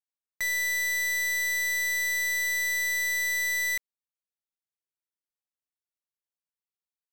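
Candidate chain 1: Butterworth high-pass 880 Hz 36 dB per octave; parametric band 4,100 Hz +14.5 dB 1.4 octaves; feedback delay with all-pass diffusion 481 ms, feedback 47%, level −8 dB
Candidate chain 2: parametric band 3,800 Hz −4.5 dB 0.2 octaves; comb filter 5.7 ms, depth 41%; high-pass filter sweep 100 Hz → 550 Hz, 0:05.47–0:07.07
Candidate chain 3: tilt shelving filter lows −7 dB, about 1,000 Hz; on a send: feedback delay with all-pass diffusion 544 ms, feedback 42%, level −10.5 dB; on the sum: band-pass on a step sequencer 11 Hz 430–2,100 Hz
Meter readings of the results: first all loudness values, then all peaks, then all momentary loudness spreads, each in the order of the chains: −17.0, −25.5, −28.5 LKFS; −13.5, −23.5, −19.0 dBFS; 14, 2, 11 LU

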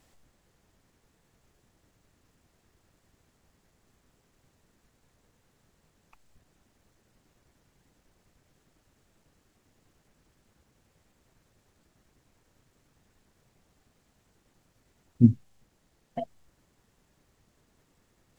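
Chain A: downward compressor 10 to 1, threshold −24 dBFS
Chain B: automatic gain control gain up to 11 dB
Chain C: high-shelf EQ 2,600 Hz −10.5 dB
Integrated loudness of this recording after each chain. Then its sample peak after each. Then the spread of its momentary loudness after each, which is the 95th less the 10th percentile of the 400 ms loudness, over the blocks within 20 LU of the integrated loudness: −36.0, −21.5, −27.0 LKFS; −16.0, −1.0, −6.0 dBFS; 11, 15, 20 LU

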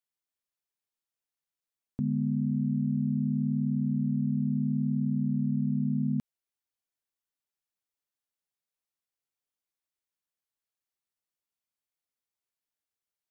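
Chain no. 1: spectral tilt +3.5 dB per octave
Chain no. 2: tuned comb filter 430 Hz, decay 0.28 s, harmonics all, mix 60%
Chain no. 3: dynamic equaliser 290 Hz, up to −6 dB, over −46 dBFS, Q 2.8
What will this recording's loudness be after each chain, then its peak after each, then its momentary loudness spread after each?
−37.0, −36.5, −30.5 LKFS; −18.5, −27.5, −20.5 dBFS; 2, 2, 2 LU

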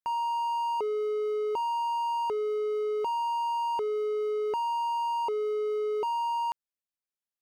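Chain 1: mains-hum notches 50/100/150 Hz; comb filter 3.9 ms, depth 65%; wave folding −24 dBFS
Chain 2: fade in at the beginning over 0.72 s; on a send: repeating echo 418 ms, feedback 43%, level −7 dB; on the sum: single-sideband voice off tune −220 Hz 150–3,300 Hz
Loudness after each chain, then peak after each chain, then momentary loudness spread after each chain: −31.5, −30.0 LKFS; −24.0, −21.5 dBFS; 0, 6 LU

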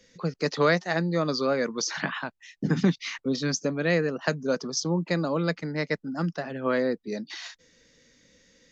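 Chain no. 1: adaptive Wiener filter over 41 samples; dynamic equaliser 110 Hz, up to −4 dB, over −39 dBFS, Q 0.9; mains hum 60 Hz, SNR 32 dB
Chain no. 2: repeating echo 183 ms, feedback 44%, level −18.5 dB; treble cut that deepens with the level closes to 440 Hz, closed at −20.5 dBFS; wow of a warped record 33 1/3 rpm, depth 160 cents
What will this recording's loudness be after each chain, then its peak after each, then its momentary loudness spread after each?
−29.5, −29.5 LKFS; −10.0, −11.5 dBFS; 9, 7 LU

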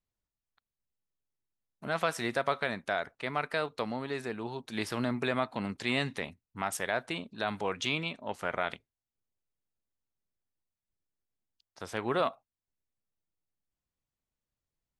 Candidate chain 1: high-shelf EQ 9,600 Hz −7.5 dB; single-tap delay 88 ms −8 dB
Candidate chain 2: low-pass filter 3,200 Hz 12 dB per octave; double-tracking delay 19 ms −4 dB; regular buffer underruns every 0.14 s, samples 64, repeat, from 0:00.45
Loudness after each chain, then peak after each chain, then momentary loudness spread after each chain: −33.0, −32.5 LKFS; −13.5, −13.0 dBFS; 7, 7 LU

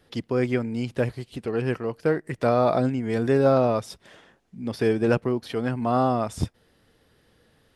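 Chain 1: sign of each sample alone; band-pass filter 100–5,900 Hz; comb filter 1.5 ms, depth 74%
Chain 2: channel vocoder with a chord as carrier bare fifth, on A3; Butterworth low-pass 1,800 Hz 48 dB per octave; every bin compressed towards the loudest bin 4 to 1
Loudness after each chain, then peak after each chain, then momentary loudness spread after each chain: −24.5, −25.5 LKFS; −14.0, −10.0 dBFS; 2, 15 LU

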